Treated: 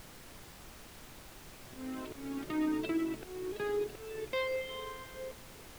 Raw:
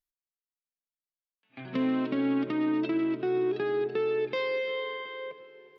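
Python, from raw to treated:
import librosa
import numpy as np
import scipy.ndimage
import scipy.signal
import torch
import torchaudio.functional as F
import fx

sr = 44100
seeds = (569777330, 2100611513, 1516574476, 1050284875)

y = fx.dereverb_blind(x, sr, rt60_s=1.4)
y = fx.auto_swell(y, sr, attack_ms=464.0)
y = fx.dmg_noise_colour(y, sr, seeds[0], colour='pink', level_db=-50.0)
y = y * 10.0 ** (-1.5 / 20.0)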